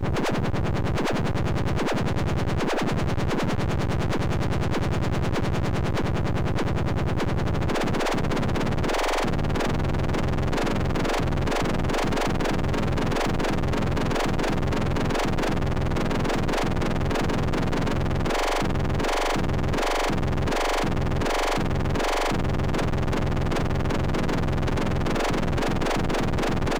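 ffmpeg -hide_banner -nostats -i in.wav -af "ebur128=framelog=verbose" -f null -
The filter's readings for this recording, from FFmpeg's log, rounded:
Integrated loudness:
  I:         -25.5 LUFS
  Threshold: -35.5 LUFS
Loudness range:
  LRA:         0.8 LU
  Threshold: -45.5 LUFS
  LRA low:   -25.9 LUFS
  LRA high:  -25.1 LUFS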